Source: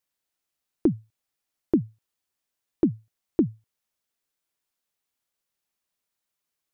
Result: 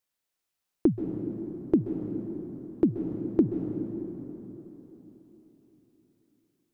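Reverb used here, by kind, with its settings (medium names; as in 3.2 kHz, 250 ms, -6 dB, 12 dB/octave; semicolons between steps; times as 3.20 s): plate-style reverb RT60 4.1 s, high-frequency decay 0.6×, pre-delay 120 ms, DRR 4 dB; trim -1 dB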